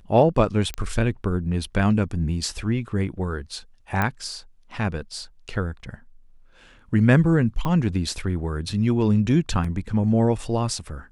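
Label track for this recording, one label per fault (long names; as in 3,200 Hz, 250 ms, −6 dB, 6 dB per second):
0.740000	0.740000	click −14 dBFS
4.020000	4.020000	click −10 dBFS
7.650000	7.650000	click −14 dBFS
9.640000	9.640000	drop-out 4.1 ms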